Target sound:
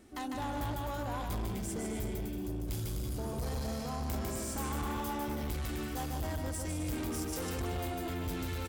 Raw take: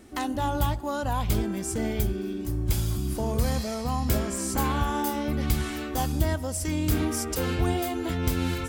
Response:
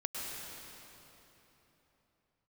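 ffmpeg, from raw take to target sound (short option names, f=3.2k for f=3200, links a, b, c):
-filter_complex "[0:a]asplit=2[a][b];[b]aecho=0:1:150|255|328.5|380|416:0.631|0.398|0.251|0.158|0.1[c];[a][c]amix=inputs=2:normalize=0,asoftclip=type=tanh:threshold=-24dB,volume=-7.5dB"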